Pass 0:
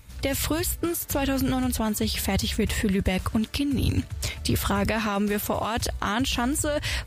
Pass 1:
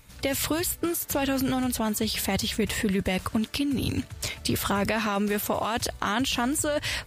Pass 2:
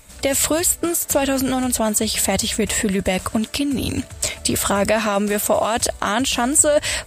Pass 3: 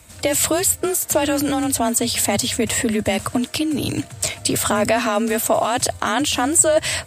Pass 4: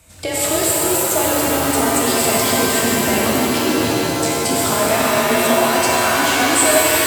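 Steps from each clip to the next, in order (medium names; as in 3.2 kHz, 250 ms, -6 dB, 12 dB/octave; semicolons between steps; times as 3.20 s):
peaking EQ 60 Hz -10 dB 1.8 oct
graphic EQ with 31 bands 125 Hz -10 dB, 630 Hz +8 dB, 8 kHz +12 dB; trim +5.5 dB
frequency shift +27 Hz
pitch-shifted reverb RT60 3.7 s, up +7 st, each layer -2 dB, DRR -5 dB; trim -4.5 dB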